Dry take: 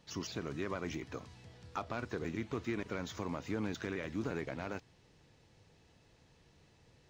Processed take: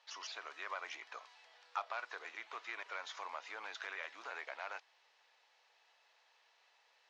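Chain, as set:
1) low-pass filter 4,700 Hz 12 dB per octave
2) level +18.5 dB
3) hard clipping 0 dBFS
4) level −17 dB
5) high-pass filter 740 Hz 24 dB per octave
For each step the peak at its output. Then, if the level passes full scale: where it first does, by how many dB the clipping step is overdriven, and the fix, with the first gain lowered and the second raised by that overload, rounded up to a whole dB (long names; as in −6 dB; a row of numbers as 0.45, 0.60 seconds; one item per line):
−24.0, −5.5, −5.5, −22.5, −25.0 dBFS
no step passes full scale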